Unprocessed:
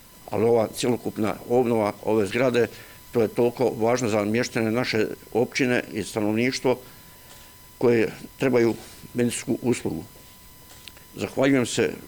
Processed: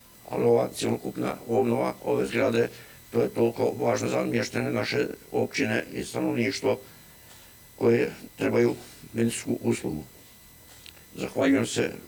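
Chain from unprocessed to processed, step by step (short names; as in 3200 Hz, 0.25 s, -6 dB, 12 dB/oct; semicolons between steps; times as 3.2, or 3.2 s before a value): short-time reversal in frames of 51 ms; HPF 40 Hz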